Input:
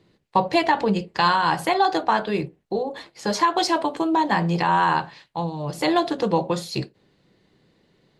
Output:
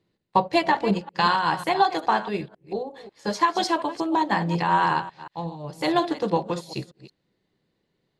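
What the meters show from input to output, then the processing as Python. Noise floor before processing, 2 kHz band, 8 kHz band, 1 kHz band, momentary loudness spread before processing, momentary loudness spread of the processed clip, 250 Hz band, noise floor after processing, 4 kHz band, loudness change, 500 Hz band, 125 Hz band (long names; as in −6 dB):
−65 dBFS, −2.0 dB, −5.0 dB, −1.5 dB, 10 LU, 13 LU, −2.5 dB, −75 dBFS, −2.5 dB, −2.0 dB, −2.5 dB, −3.0 dB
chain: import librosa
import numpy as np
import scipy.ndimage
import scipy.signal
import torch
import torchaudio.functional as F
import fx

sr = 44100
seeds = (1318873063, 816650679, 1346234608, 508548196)

y = fx.reverse_delay(x, sr, ms=182, wet_db=-10)
y = fx.upward_expand(y, sr, threshold_db=-39.0, expansion=1.5)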